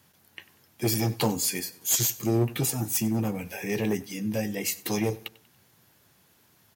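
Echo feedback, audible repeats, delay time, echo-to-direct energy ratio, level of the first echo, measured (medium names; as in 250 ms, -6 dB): 43%, 2, 95 ms, -20.0 dB, -21.0 dB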